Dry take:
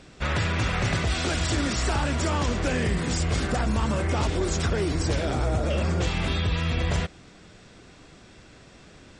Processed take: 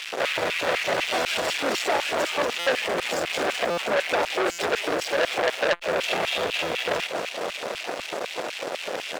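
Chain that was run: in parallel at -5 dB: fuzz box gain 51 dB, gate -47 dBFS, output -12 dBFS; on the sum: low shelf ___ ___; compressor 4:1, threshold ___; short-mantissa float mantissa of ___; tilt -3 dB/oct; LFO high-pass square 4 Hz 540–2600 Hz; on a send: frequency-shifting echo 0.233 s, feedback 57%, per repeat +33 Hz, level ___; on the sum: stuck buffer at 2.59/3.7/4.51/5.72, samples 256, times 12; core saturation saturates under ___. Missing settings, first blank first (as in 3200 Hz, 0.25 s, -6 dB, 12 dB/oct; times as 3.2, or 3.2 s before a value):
110 Hz, -8 dB, -20 dBFS, 2-bit, -12 dB, 2500 Hz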